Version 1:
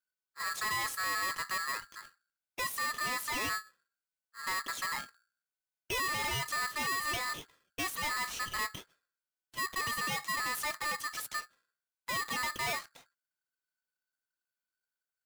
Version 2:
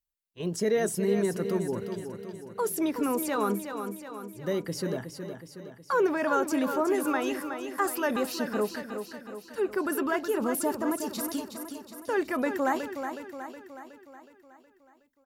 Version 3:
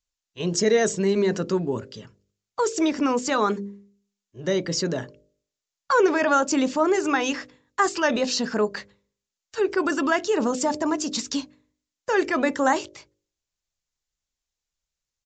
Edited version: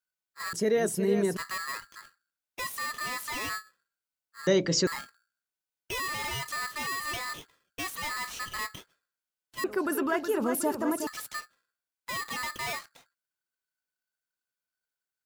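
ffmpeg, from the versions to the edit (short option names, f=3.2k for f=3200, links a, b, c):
-filter_complex "[1:a]asplit=2[a][b];[0:a]asplit=4[c][d][e][f];[c]atrim=end=0.532[g];[a]atrim=start=0.528:end=1.372[h];[d]atrim=start=1.368:end=4.472[i];[2:a]atrim=start=4.468:end=4.872[j];[e]atrim=start=4.868:end=9.642[k];[b]atrim=start=9.638:end=11.072[l];[f]atrim=start=11.068[m];[g][h]acrossfade=d=0.004:c1=hsin:c2=hsin[n];[n][i]acrossfade=d=0.004:c1=hsin:c2=hsin[o];[o][j]acrossfade=d=0.004:c1=hsin:c2=hsin[p];[p][k]acrossfade=d=0.004:c1=hsin:c2=hsin[q];[q][l]acrossfade=d=0.004:c1=hsin:c2=hsin[r];[r][m]acrossfade=d=0.004:c1=hsin:c2=hsin"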